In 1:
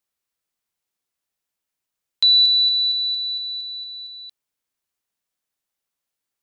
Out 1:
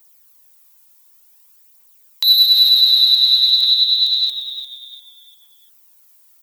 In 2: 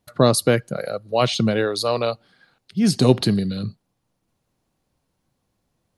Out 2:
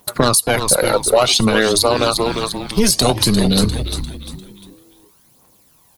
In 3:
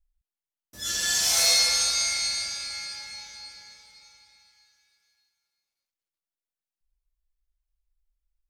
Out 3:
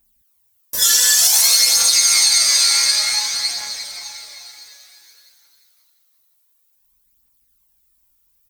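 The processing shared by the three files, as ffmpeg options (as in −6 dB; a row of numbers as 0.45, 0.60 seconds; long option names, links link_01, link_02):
-filter_complex "[0:a]highpass=frequency=270:poles=1,acontrast=69,aemphasis=mode=production:type=50fm,tremolo=f=220:d=0.667,lowpass=frequency=2500:poles=1,equalizer=frequency=1000:width_type=o:width=0.38:gain=6,crystalizer=i=2.5:c=0,aphaser=in_gain=1:out_gain=1:delay=2.3:decay=0.5:speed=0.55:type=triangular,asplit=2[link_01][link_02];[link_02]asplit=4[link_03][link_04][link_05][link_06];[link_03]adelay=349,afreqshift=-130,volume=-12dB[link_07];[link_04]adelay=698,afreqshift=-260,volume=-21.1dB[link_08];[link_05]adelay=1047,afreqshift=-390,volume=-30.2dB[link_09];[link_06]adelay=1396,afreqshift=-520,volume=-39.4dB[link_10];[link_07][link_08][link_09][link_10]amix=inputs=4:normalize=0[link_11];[link_01][link_11]amix=inputs=2:normalize=0,acompressor=threshold=-20dB:ratio=8,alimiter=level_in=11.5dB:limit=-1dB:release=50:level=0:latency=1,volume=-1dB"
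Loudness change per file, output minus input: +5.5, +5.5, +10.5 LU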